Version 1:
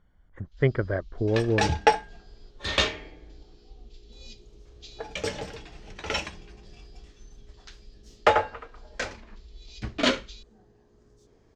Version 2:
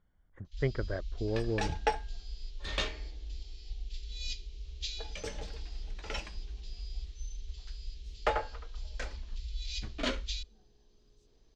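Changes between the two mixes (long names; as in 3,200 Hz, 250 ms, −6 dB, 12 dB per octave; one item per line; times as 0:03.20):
speech −8.5 dB
first sound +8.5 dB
second sound −10.5 dB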